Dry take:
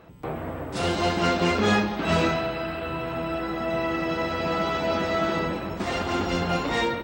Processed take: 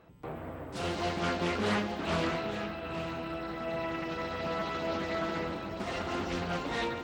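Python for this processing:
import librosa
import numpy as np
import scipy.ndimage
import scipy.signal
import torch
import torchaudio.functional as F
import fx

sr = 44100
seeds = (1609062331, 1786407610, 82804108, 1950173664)

y = x + 10.0 ** (-10.0 / 20.0) * np.pad(x, (int(856 * sr / 1000.0), 0))[:len(x)]
y = fx.doppler_dist(y, sr, depth_ms=0.36)
y = y * librosa.db_to_amplitude(-8.5)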